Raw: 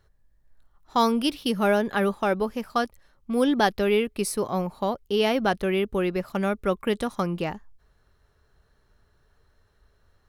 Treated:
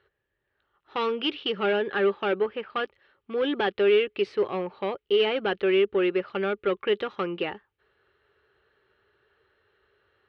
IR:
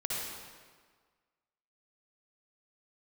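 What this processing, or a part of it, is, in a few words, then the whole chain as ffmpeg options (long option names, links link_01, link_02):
overdrive pedal into a guitar cabinet: -filter_complex "[0:a]asettb=1/sr,asplit=3[link_01][link_02][link_03];[link_01]atrim=end=2.354[link_04];[link_02]atrim=start=2.35:end=2.84,asetpts=PTS-STARTPTS,afade=type=in:duration=0.004:curve=qsin,afade=type=out:start_time=0.486:duration=0.004:curve=qsin,lowpass=3600[link_05];[link_03]atrim=start=2.836[link_06];[link_04][link_05]acrossfade=duration=0.004:curve1=hsin:curve2=qsin[link_07];[link_07][link_06]acrossfade=duration=0.004:curve1=qsin:curve2=hsin,asplit=2[link_08][link_09];[link_09]highpass=frequency=720:poles=1,volume=18dB,asoftclip=type=tanh:threshold=-8.5dB[link_10];[link_08][link_10]amix=inputs=2:normalize=0,lowpass=frequency=2000:poles=1,volume=-6dB,highpass=86,equalizer=frequency=160:width_type=q:width=4:gain=-8,equalizer=frequency=240:width_type=q:width=4:gain=-10,equalizer=frequency=390:width_type=q:width=4:gain=7,equalizer=frequency=680:width_type=q:width=4:gain=-9,equalizer=frequency=1000:width_type=q:width=4:gain=-8,equalizer=frequency=2900:width_type=q:width=4:gain=6,lowpass=frequency=3700:width=0.5412,lowpass=frequency=3700:width=1.3066,volume=-5.5dB"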